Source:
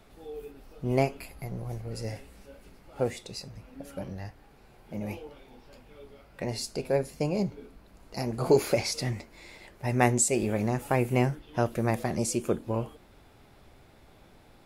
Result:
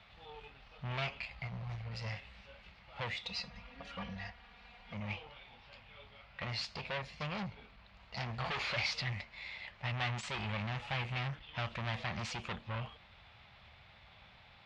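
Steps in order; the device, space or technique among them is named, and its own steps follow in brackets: scooped metal amplifier (valve stage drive 33 dB, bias 0.6; cabinet simulation 77–3600 Hz, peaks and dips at 210 Hz +5 dB, 430 Hz -5 dB, 1.5 kHz -4 dB; amplifier tone stack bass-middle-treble 10-0-10); 3.23–4.94 s: comb 4.2 ms, depth 96%; trim +12.5 dB

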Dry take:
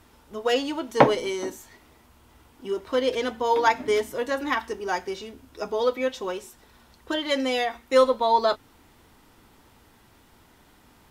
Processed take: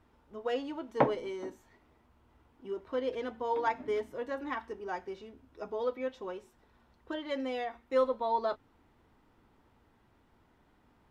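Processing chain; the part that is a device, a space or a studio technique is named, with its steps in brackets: through cloth (treble shelf 3.7 kHz -17.5 dB); trim -9 dB

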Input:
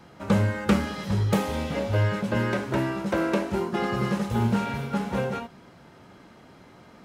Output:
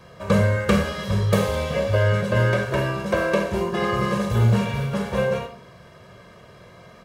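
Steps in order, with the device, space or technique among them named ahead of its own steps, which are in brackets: microphone above a desk (comb 1.8 ms, depth 69%; reverberation RT60 0.35 s, pre-delay 36 ms, DRR 6 dB); trim +2 dB

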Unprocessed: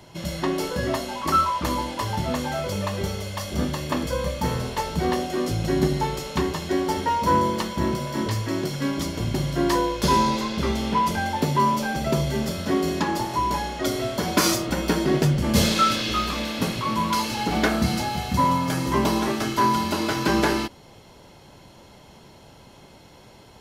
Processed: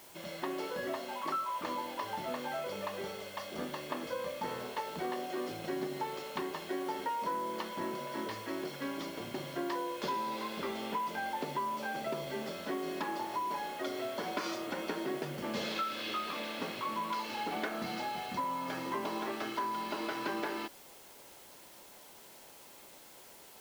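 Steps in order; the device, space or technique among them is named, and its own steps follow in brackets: baby monitor (band-pass 340–3500 Hz; compression, threshold -25 dBFS, peak gain reduction 9.5 dB; white noise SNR 18 dB); trim -7.5 dB

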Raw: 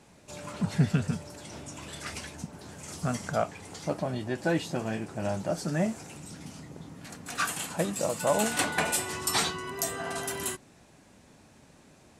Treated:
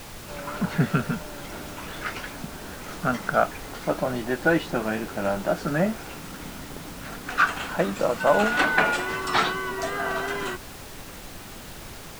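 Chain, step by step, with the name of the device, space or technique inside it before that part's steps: horn gramophone (band-pass 190–3100 Hz; peaking EQ 1.4 kHz +7.5 dB 0.38 oct; wow and flutter; pink noise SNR 13 dB); trim +6 dB

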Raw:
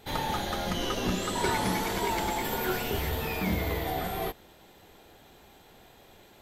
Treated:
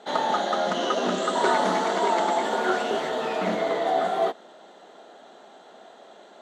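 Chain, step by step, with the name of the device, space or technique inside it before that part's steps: resonant low shelf 150 Hz -12 dB, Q 1.5; full-range speaker at full volume (loudspeaker Doppler distortion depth 0.2 ms; cabinet simulation 260–7000 Hz, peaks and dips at 310 Hz -4 dB, 650 Hz +9 dB, 1.3 kHz +5 dB, 2.4 kHz -10 dB, 5.1 kHz -8 dB); trim +5 dB

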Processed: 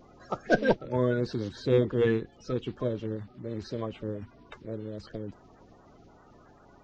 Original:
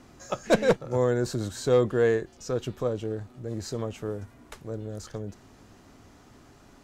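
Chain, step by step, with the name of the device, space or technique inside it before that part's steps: clip after many re-uploads (low-pass 4.7 kHz 24 dB/octave; coarse spectral quantiser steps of 30 dB); trim -1.5 dB

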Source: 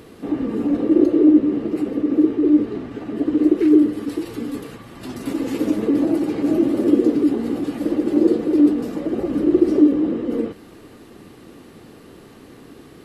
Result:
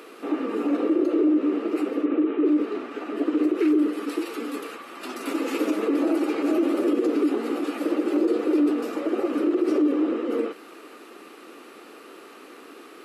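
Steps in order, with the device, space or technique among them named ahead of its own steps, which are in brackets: laptop speaker (high-pass 310 Hz 24 dB/octave; peaking EQ 1.3 kHz +10 dB 0.33 oct; peaking EQ 2.5 kHz +7 dB 0.34 oct; peak limiter -14 dBFS, peak gain reduction 8.5 dB); 2.05–2.46 s: steep low-pass 3.5 kHz 36 dB/octave

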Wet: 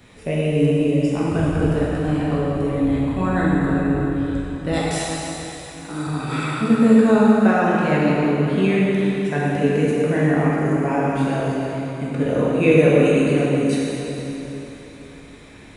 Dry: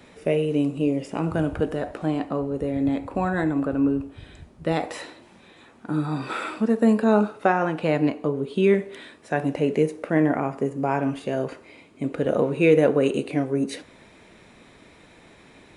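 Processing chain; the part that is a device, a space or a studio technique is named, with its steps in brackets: 4.73–6.07 s: tone controls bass -12 dB, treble +10 dB; smiley-face EQ (bass shelf 140 Hz +9 dB; peaking EQ 470 Hz -4.5 dB 2.2 oct; treble shelf 8.8 kHz +4.5 dB); plate-style reverb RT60 3.7 s, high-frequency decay 0.85×, DRR -6.5 dB; trim -1 dB

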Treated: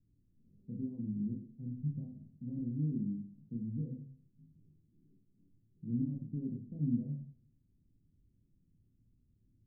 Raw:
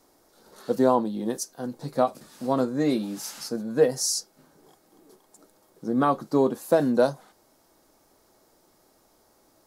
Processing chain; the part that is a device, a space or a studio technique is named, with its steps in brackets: club heard from the street (peak limiter -17.5 dBFS, peak gain reduction 10.5 dB; low-pass 170 Hz 24 dB/octave; reverberation RT60 0.55 s, pre-delay 20 ms, DRR 0.5 dB); trim +1 dB

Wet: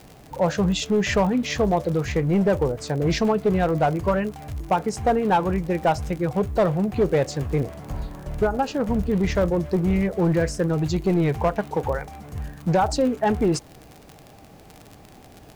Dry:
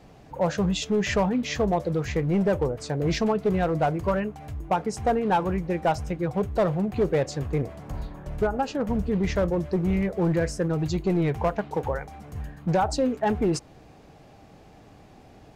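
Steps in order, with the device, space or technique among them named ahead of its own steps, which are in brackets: vinyl LP (crackle 53 per s -33 dBFS; white noise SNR 41 dB); trim +3 dB

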